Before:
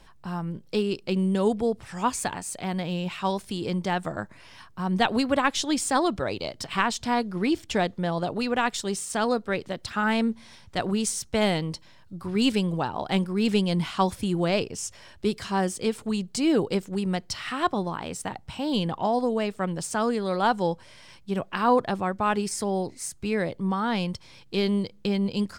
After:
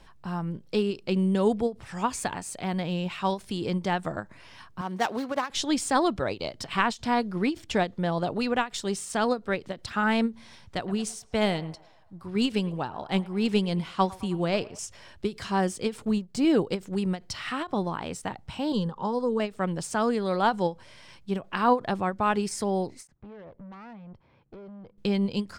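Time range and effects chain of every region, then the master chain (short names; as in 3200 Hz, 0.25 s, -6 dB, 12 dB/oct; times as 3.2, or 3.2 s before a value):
4.81–5.5 median filter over 15 samples + HPF 550 Hz 6 dB/oct
10.77–14.79 narrowing echo 0.107 s, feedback 62%, band-pass 970 Hz, level -14 dB + upward expander, over -31 dBFS
16.05–16.45 G.711 law mismatch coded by A + tilt shelf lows +4 dB, about 660 Hz
18.72–19.4 LPF 8300 Hz + fixed phaser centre 460 Hz, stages 8
23.07–24.98 compressor 10:1, threshold -33 dBFS + LPF 1300 Hz + tube stage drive 41 dB, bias 0.6
whole clip: high shelf 6600 Hz -5.5 dB; ending taper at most 280 dB/s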